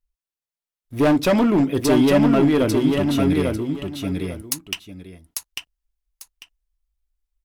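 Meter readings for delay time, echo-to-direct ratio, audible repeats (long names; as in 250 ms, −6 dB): 846 ms, −4.0 dB, 2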